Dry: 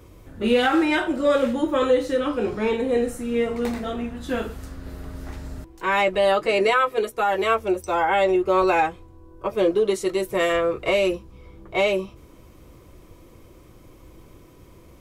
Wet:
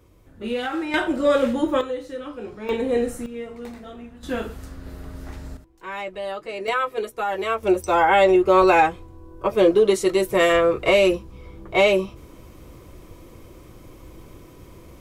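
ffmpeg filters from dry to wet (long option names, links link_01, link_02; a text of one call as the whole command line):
ffmpeg -i in.wav -af "asetnsamples=nb_out_samples=441:pad=0,asendcmd='0.94 volume volume 1dB;1.81 volume volume -10dB;2.69 volume volume 0dB;3.26 volume volume -10.5dB;4.23 volume volume -1dB;5.57 volume volume -11dB;6.68 volume volume -3.5dB;7.63 volume volume 4dB',volume=-7.5dB" out.wav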